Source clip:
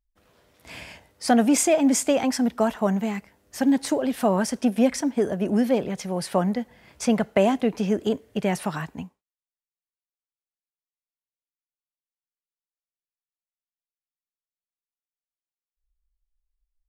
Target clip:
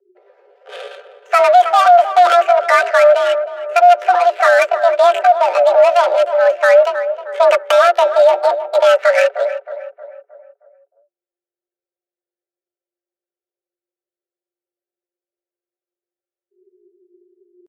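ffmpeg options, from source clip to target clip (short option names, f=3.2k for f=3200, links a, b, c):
-filter_complex "[0:a]equalizer=f=450:w=1.3:g=-13.5,aecho=1:1:6.4:0.57,acrossover=split=1800[a][b];[b]acompressor=threshold=-44dB:ratio=20[c];[a][c]amix=inputs=2:normalize=0,asetrate=56889,aresample=44100,adynamicsmooth=sensitivity=7.5:basefreq=670,atempo=0.74,afreqshift=350,asuperstop=centerf=1100:order=4:qfactor=6.3,asplit=2[d][e];[e]adelay=313,lowpass=f=1.5k:p=1,volume=-11.5dB,asplit=2[f][g];[g]adelay=313,lowpass=f=1.5k:p=1,volume=0.49,asplit=2[h][i];[i]adelay=313,lowpass=f=1.5k:p=1,volume=0.49,asplit=2[j][k];[k]adelay=313,lowpass=f=1.5k:p=1,volume=0.49,asplit=2[l][m];[m]adelay=313,lowpass=f=1.5k:p=1,volume=0.49[n];[d][f][h][j][l][n]amix=inputs=6:normalize=0,alimiter=level_in=19dB:limit=-1dB:release=50:level=0:latency=1,volume=-1dB"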